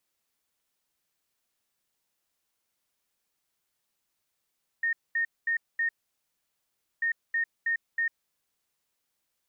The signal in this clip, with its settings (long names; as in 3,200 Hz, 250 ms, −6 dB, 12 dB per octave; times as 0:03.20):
beeps in groups sine 1,840 Hz, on 0.10 s, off 0.22 s, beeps 4, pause 1.13 s, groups 2, −24 dBFS